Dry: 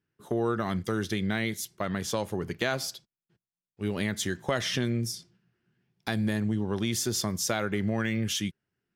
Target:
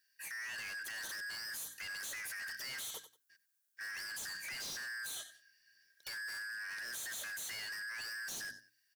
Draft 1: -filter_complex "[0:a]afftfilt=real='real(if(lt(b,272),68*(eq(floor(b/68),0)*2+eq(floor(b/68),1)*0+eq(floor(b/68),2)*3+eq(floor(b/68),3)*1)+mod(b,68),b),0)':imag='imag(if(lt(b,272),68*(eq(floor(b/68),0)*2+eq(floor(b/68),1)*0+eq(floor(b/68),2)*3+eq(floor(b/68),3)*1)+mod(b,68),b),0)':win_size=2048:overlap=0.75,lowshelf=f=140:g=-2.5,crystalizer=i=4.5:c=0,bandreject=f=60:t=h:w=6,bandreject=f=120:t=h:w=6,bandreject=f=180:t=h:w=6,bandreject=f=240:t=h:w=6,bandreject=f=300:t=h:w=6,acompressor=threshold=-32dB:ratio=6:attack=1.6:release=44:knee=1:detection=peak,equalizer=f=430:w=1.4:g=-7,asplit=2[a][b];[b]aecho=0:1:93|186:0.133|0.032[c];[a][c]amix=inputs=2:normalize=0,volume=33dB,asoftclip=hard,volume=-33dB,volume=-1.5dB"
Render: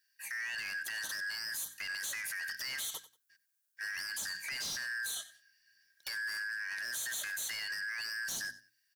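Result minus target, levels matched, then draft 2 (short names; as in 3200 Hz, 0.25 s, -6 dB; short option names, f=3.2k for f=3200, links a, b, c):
500 Hz band -4.5 dB; overloaded stage: distortion -5 dB
-filter_complex "[0:a]afftfilt=real='real(if(lt(b,272),68*(eq(floor(b/68),0)*2+eq(floor(b/68),1)*0+eq(floor(b/68),2)*3+eq(floor(b/68),3)*1)+mod(b,68),b),0)':imag='imag(if(lt(b,272),68*(eq(floor(b/68),0)*2+eq(floor(b/68),1)*0+eq(floor(b/68),2)*3+eq(floor(b/68),3)*1)+mod(b,68),b),0)':win_size=2048:overlap=0.75,lowshelf=f=140:g=-2.5,crystalizer=i=4.5:c=0,bandreject=f=60:t=h:w=6,bandreject=f=120:t=h:w=6,bandreject=f=180:t=h:w=6,bandreject=f=240:t=h:w=6,bandreject=f=300:t=h:w=6,acompressor=threshold=-32dB:ratio=6:attack=1.6:release=44:knee=1:detection=peak,asplit=2[a][b];[b]aecho=0:1:93|186:0.133|0.032[c];[a][c]amix=inputs=2:normalize=0,volume=40dB,asoftclip=hard,volume=-40dB,volume=-1.5dB"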